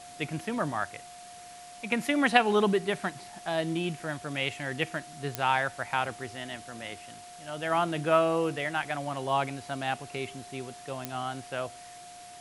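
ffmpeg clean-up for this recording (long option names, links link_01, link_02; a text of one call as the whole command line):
ffmpeg -i in.wav -af "adeclick=threshold=4,bandreject=frequency=710:width=30,afwtdn=0.0035" out.wav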